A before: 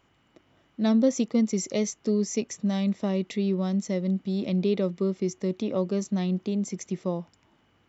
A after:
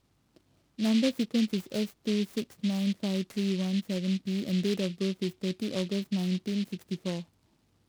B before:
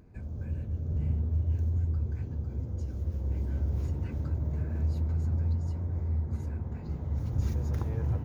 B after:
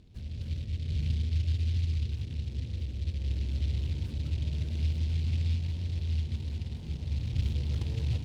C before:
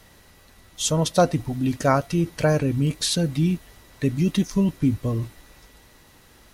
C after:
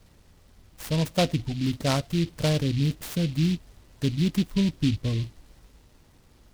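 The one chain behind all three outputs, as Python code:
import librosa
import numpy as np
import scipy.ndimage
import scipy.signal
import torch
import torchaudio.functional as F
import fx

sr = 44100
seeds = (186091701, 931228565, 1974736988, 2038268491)

y = scipy.signal.sosfilt(scipy.signal.butter(2, 3700.0, 'lowpass', fs=sr, output='sos'), x)
y = fx.low_shelf(y, sr, hz=260.0, db=8.5)
y = fx.noise_mod_delay(y, sr, seeds[0], noise_hz=3200.0, depth_ms=0.12)
y = y * 10.0 ** (-8.0 / 20.0)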